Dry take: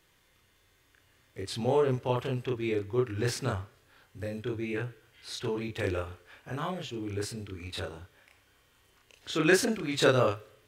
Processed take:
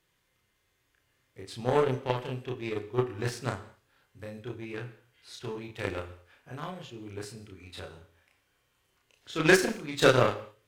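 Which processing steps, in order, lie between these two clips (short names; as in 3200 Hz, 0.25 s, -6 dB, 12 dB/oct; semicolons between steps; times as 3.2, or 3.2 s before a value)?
added harmonics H 7 -20 dB, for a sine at -9.5 dBFS; non-linear reverb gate 0.24 s falling, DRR 10 dB; gain +3 dB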